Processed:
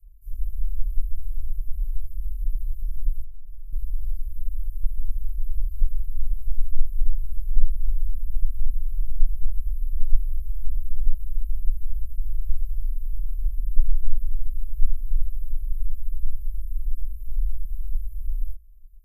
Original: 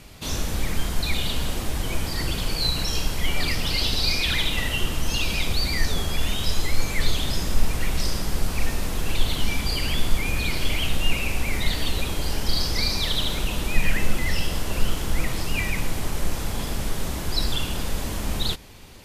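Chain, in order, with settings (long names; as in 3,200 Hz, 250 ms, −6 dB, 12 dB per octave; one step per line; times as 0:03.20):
inverse Chebyshev band-stop filter 230–3,100 Hz, stop band 80 dB
bass and treble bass +5 dB, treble −14 dB
0:03.22–0:03.73: downward compressor 6 to 1, threshold −29 dBFS, peak gain reduction 15.5 dB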